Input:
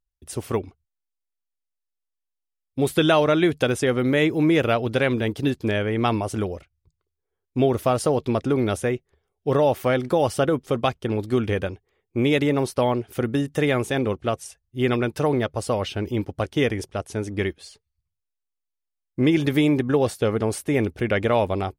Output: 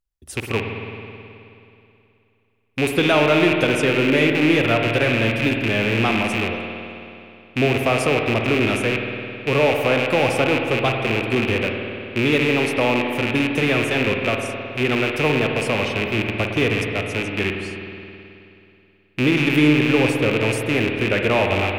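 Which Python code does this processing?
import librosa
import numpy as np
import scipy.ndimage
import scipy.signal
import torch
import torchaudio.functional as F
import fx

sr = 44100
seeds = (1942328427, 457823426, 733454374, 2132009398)

y = fx.rattle_buzz(x, sr, strikes_db=-31.0, level_db=-12.0)
y = fx.rev_spring(y, sr, rt60_s=2.8, pass_ms=(53,), chirp_ms=45, drr_db=2.5)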